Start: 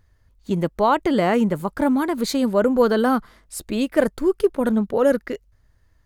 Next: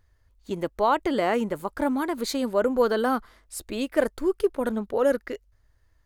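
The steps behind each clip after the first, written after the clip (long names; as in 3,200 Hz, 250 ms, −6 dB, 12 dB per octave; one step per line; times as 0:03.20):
parametric band 170 Hz −10 dB 0.9 octaves
level −3.5 dB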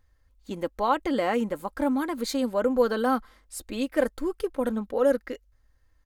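comb filter 3.8 ms, depth 45%
level −2.5 dB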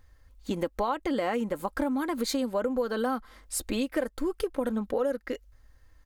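downward compressor 6 to 1, threshold −33 dBFS, peak gain reduction 15.5 dB
level +7 dB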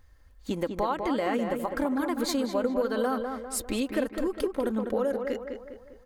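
tape delay 202 ms, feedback 50%, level −4.5 dB, low-pass 2,300 Hz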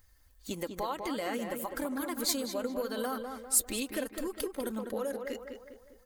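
spectral magnitudes quantised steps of 15 dB
first-order pre-emphasis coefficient 0.8
level +6.5 dB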